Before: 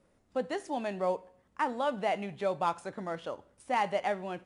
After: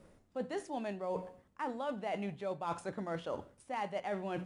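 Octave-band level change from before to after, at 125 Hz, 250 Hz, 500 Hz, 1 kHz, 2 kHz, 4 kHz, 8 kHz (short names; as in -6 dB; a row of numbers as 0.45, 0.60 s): -0.5, -2.5, -5.5, -8.0, -7.5, -7.0, -4.5 dB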